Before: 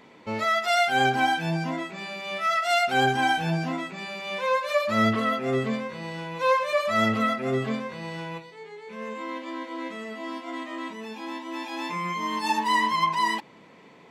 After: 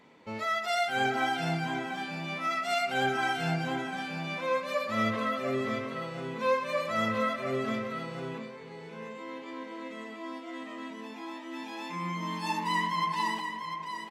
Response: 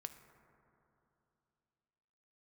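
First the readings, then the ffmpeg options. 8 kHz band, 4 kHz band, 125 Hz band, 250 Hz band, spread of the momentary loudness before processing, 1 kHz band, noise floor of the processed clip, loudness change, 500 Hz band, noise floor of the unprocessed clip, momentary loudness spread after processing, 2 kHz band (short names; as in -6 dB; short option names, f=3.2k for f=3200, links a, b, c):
-6.0 dB, -6.0 dB, -5.0 dB, -5.5 dB, 13 LU, -6.0 dB, -44 dBFS, -6.0 dB, -5.0 dB, -52 dBFS, 13 LU, -5.5 dB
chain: -filter_complex "[0:a]aecho=1:1:696:0.422[a];[1:a]atrim=start_sample=2205,asetrate=52920,aresample=44100[b];[a][b]afir=irnorm=-1:irlink=0"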